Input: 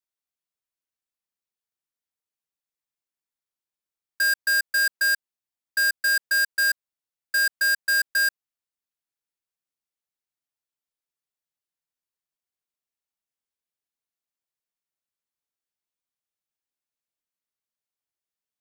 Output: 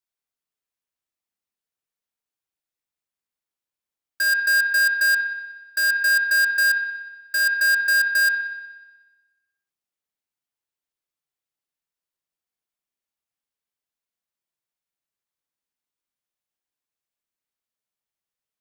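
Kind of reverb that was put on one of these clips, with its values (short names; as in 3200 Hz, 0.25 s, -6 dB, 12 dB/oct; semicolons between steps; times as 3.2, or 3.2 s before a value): spring tank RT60 1.2 s, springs 58 ms, chirp 40 ms, DRR 3 dB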